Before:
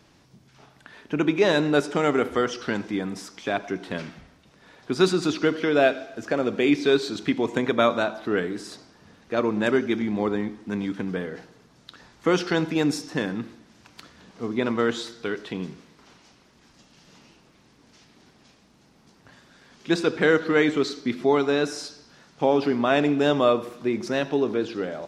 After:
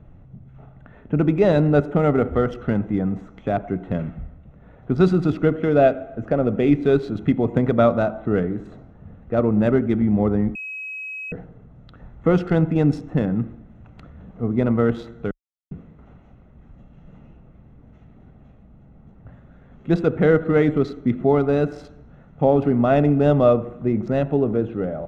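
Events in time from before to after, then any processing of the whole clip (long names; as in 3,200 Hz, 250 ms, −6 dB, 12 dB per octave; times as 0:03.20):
0:10.55–0:11.32: beep over 2,550 Hz −23 dBFS
0:15.31–0:15.71: silence
whole clip: adaptive Wiener filter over 9 samples; spectral tilt −4.5 dB per octave; comb filter 1.5 ms, depth 41%; level −1 dB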